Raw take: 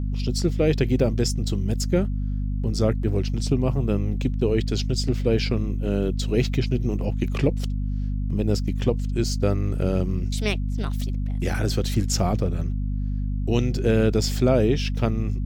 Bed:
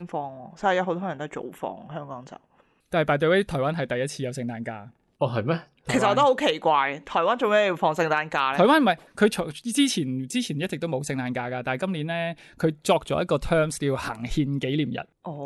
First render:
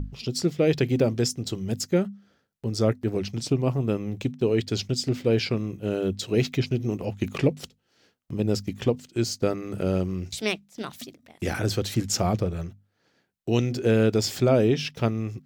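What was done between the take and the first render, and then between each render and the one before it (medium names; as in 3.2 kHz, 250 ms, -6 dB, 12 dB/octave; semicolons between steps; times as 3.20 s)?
hum notches 50/100/150/200/250 Hz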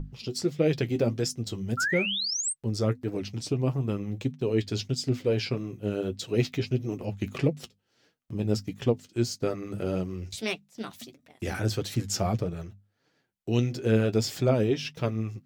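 1.77–2.53 s: painted sound rise 1.3–9 kHz -26 dBFS; flange 1.6 Hz, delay 5.9 ms, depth 5 ms, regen +39%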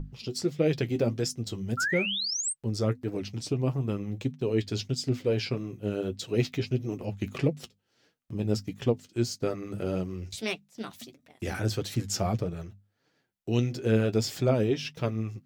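trim -1 dB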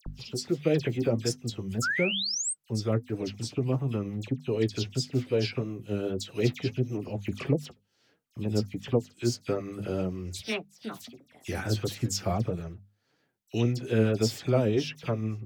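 wow and flutter 19 cents; phase dispersion lows, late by 64 ms, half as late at 2.5 kHz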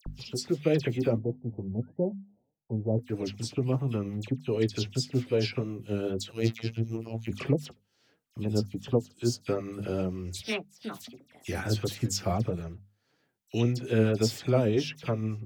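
1.18–2.99 s: Chebyshev low-pass 900 Hz, order 6; 6.32–7.30 s: robot voice 113 Hz; 8.52–9.46 s: peaking EQ 2.1 kHz -12 dB 0.59 oct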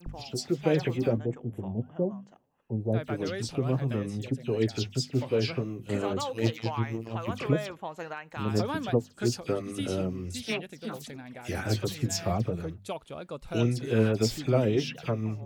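add bed -15.5 dB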